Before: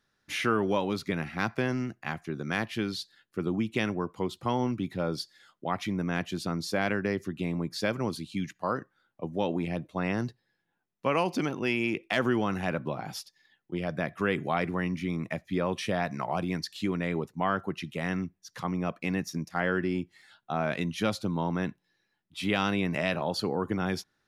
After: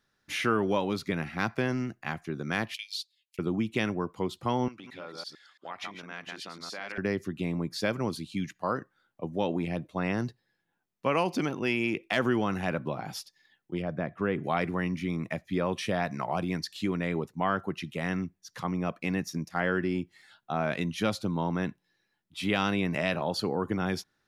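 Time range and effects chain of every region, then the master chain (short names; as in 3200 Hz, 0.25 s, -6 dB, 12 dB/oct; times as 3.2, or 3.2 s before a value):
2.74–3.39 steep high-pass 2200 Hz 72 dB/oct + transient shaper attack +4 dB, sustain -10 dB + three-band squash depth 70%
4.68–6.98 reverse delay 0.112 s, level -4 dB + compressor 5:1, threshold -29 dBFS + band-pass 2300 Hz, Q 0.5
13.82–14.44 LPF 3900 Hz 6 dB/oct + high shelf 2100 Hz -11 dB
whole clip: dry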